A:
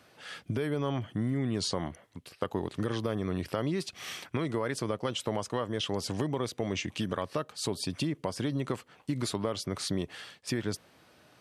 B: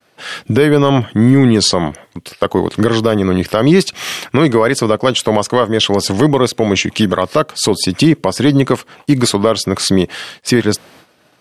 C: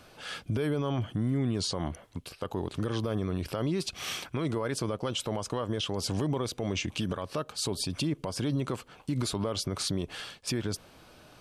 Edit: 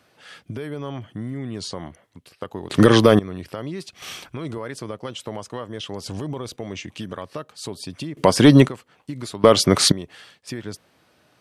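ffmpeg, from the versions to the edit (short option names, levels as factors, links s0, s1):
-filter_complex "[1:a]asplit=3[s0][s1][s2];[2:a]asplit=2[s3][s4];[0:a]asplit=6[s5][s6][s7][s8][s9][s10];[s5]atrim=end=2.702[s11];[s0]atrim=start=2.698:end=3.192[s12];[s6]atrim=start=3.188:end=4.022[s13];[s3]atrim=start=4.018:end=4.582[s14];[s7]atrim=start=4.578:end=6.062[s15];[s4]atrim=start=6.058:end=6.562[s16];[s8]atrim=start=6.558:end=8.172[s17];[s1]atrim=start=8.168:end=8.682[s18];[s9]atrim=start=8.678:end=9.442[s19];[s2]atrim=start=9.438:end=9.922[s20];[s10]atrim=start=9.918[s21];[s11][s12]acrossfade=d=0.004:c1=hsin:c2=hsin[s22];[s22][s13]acrossfade=d=0.004:c1=hsin:c2=hsin[s23];[s23][s14]acrossfade=d=0.004:c1=hsin:c2=hsin[s24];[s24][s15]acrossfade=d=0.004:c1=hsin:c2=hsin[s25];[s25][s16]acrossfade=d=0.004:c1=hsin:c2=hsin[s26];[s26][s17]acrossfade=d=0.004:c1=hsin:c2=hsin[s27];[s27][s18]acrossfade=d=0.004:c1=hsin:c2=hsin[s28];[s28][s19]acrossfade=d=0.004:c1=hsin:c2=hsin[s29];[s29][s20]acrossfade=d=0.004:c1=hsin:c2=hsin[s30];[s30][s21]acrossfade=d=0.004:c1=hsin:c2=hsin"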